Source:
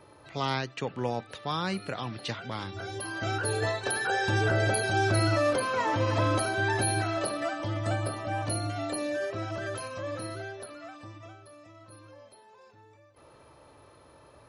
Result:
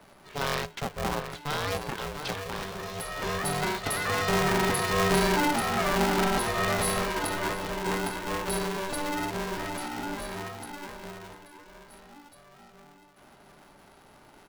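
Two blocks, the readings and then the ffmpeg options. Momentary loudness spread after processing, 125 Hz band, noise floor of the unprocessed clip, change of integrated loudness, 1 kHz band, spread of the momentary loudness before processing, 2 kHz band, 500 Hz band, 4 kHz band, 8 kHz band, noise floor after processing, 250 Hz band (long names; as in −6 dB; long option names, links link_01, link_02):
12 LU, −4.0 dB, −56 dBFS, +1.0 dB, +2.5 dB, 12 LU, +0.5 dB, 0.0 dB, +3.0 dB, +2.5 dB, −55 dBFS, +2.5 dB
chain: -filter_complex "[0:a]asplit=2[link_01][link_02];[link_02]adelay=699.7,volume=-7dB,highshelf=frequency=4000:gain=-15.7[link_03];[link_01][link_03]amix=inputs=2:normalize=0,aeval=exprs='val(0)*sgn(sin(2*PI*290*n/s))':channel_layout=same"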